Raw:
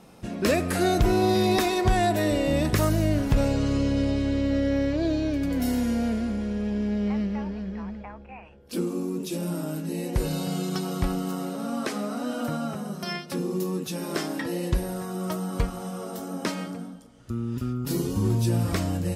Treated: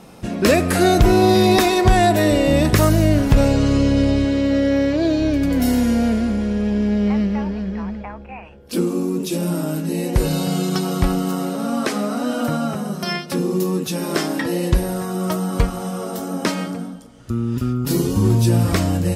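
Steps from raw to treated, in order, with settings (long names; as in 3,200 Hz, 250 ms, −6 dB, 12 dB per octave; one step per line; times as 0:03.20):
0:04.25–0:05.20: high-pass filter 140 Hz 6 dB per octave
level +8 dB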